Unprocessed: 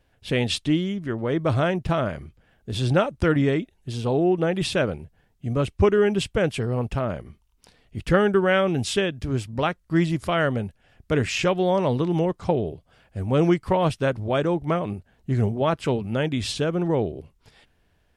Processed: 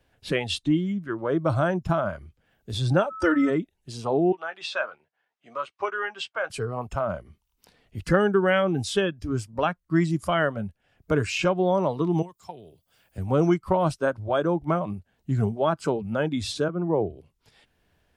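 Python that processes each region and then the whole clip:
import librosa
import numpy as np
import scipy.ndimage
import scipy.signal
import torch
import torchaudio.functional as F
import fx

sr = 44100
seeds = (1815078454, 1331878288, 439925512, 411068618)

y = fx.highpass(x, sr, hz=230.0, slope=6, at=(3.09, 3.49), fade=0.02)
y = fx.comb(y, sr, ms=3.4, depth=0.75, at=(3.09, 3.49), fade=0.02)
y = fx.dmg_tone(y, sr, hz=1300.0, level_db=-35.0, at=(3.09, 3.49), fade=0.02)
y = fx.chain(y, sr, fx.highpass(hz=850.0, slope=12),
    fx.air_absorb(metres=110.0),
    fx.doubler(ms=13.0, db=-9), at=(4.32, 6.5))
y = fx.chain(y, sr, fx.pre_emphasis(coefficient=0.8),
    fx.band_squash(depth_pct=40), at=(12.22, 13.18))
y = fx.chain(y, sr, fx.lowpass(hz=2100.0, slope=12),
    fx.band_widen(depth_pct=100), at=(16.68, 17.1))
y = fx.noise_reduce_blind(y, sr, reduce_db=12)
y = fx.low_shelf(y, sr, hz=66.0, db=-6.0)
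y = fx.band_squash(y, sr, depth_pct=40)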